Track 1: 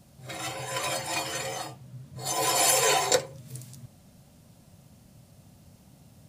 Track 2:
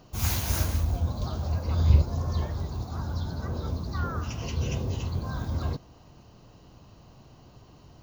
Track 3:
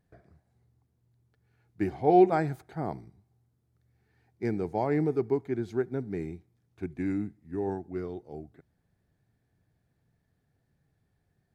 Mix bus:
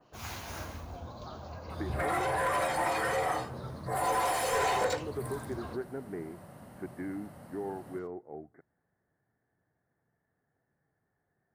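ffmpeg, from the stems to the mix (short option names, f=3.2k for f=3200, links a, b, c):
-filter_complex "[0:a]adelay=1700,volume=-0.5dB,asplit=2[a][b];[b]volume=-15dB[c];[1:a]adynamicequalizer=threshold=0.00447:dfrequency=4300:dqfactor=0.71:tfrequency=4300:tqfactor=0.71:attack=5:release=100:ratio=0.375:range=2:mode=cutabove:tftype=bell,volume=-17dB,asplit=2[d][e];[e]volume=-12.5dB[f];[2:a]acompressor=threshold=-30dB:ratio=6,volume=-11dB[g];[a][g]amix=inputs=2:normalize=0,asuperstop=centerf=4300:order=12:qfactor=0.68,acompressor=threshold=-35dB:ratio=3,volume=0dB[h];[c][f]amix=inputs=2:normalize=0,aecho=0:1:83:1[i];[d][h][i]amix=inputs=3:normalize=0,asplit=2[j][k];[k]highpass=f=720:p=1,volume=21dB,asoftclip=type=tanh:threshold=-18.5dB[l];[j][l]amix=inputs=2:normalize=0,lowpass=f=1.9k:p=1,volume=-6dB"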